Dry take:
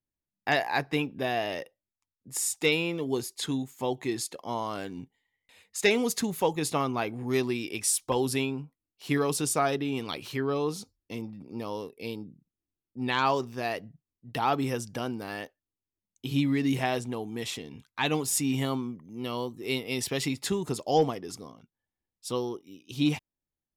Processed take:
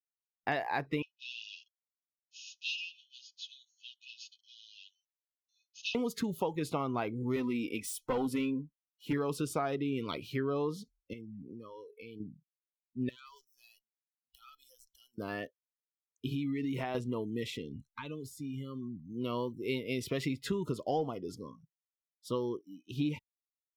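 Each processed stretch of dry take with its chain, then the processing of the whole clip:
0:01.02–0:05.95: lower of the sound and its delayed copy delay 9.5 ms + linear-phase brick-wall band-pass 2,500–6,800 Hz + saturating transformer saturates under 1,100 Hz
0:07.36–0:09.13: parametric band 4,600 Hz −4.5 dB 0.8 octaves + comb filter 4 ms, depth 52% + hard clipping −23.5 dBFS
0:11.13–0:12.20: parametric band 1,800 Hz +9 dB 1.7 octaves + downward compressor 20 to 1, threshold −41 dBFS
0:13.09–0:15.18: first difference + downward compressor 2 to 1, threshold −44 dBFS + tube saturation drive 35 dB, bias 0.7
0:16.28–0:16.95: low-shelf EQ 88 Hz −11.5 dB + downward compressor 16 to 1, threshold −29 dBFS
0:17.69–0:19.13: low-shelf EQ 72 Hz +9 dB + downward compressor 8 to 1, threshold −36 dBFS
whole clip: noise reduction from a noise print of the clip's start 29 dB; parametric band 8,600 Hz −14 dB 2 octaves; downward compressor 6 to 1, threshold −29 dBFS

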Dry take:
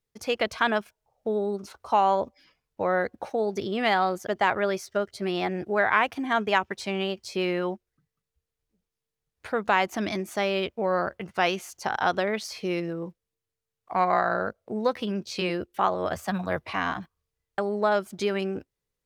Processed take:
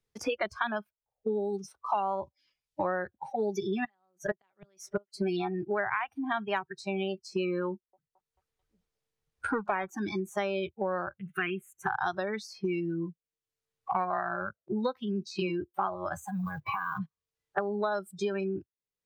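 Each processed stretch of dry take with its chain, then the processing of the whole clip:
0:03.24–0:05.42: comb filter 5.2 ms, depth 59% + gate with flip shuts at −14 dBFS, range −32 dB
0:07.71–0:09.90: echo through a band-pass that steps 220 ms, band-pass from 750 Hz, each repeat 0.7 octaves, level −6 dB + highs frequency-modulated by the lows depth 0.24 ms
0:11.18–0:11.87: phaser with its sweep stopped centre 2,100 Hz, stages 4 + one half of a high-frequency compander encoder only
0:16.19–0:17.00: one scale factor per block 5 bits + downward compressor 8 to 1, threshold −31 dBFS
whole clip: noise reduction from a noise print of the clip's start 24 dB; high-shelf EQ 12,000 Hz −11.5 dB; multiband upward and downward compressor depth 100%; level −5 dB

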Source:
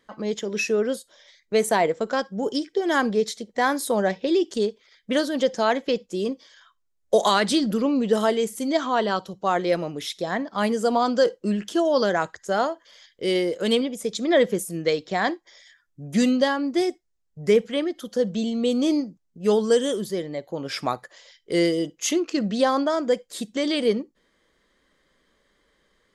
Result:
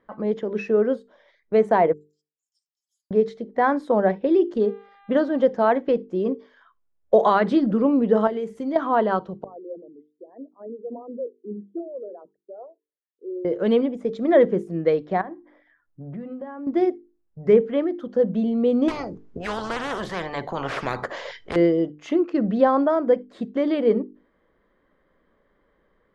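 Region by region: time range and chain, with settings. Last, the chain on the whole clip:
0:01.93–0:03.11: inverse Chebyshev high-pass filter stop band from 1,900 Hz, stop band 70 dB + first difference
0:04.60–0:05.42: parametric band 2,300 Hz −6.5 dB 0.24 octaves + hum with harmonics 400 Hz, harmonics 10, −52 dBFS −3 dB per octave
0:08.27–0:08.76: high-shelf EQ 4,000 Hz +8 dB + downward compressor, threshold −26 dBFS
0:09.44–0:13.45: spectral envelope exaggerated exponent 3 + four-pole ladder band-pass 290 Hz, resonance 40% + expander for the loud parts, over −54 dBFS
0:15.21–0:16.67: low-pass filter 1,800 Hz + mains-hum notches 50/100/150/200/250/300 Hz + downward compressor, threshold −35 dBFS
0:18.88–0:21.56: high-shelf EQ 5,500 Hz +11.5 dB + every bin compressed towards the loudest bin 10 to 1
whole clip: low-pass filter 1,300 Hz 12 dB per octave; mains-hum notches 50/100/150/200/250/300/350/400/450 Hz; level +3.5 dB

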